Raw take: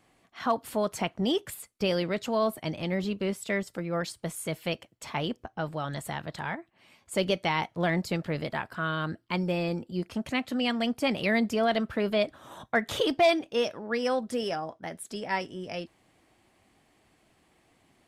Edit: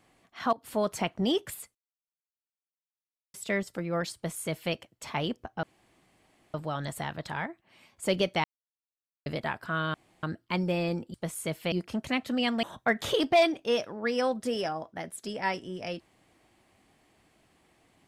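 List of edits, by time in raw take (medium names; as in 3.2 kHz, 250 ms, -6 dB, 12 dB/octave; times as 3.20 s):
0.53–0.78 s: fade in, from -22 dB
1.75–3.34 s: mute
4.15–4.73 s: copy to 9.94 s
5.63 s: insert room tone 0.91 s
7.53–8.35 s: mute
9.03 s: insert room tone 0.29 s
10.85–12.50 s: delete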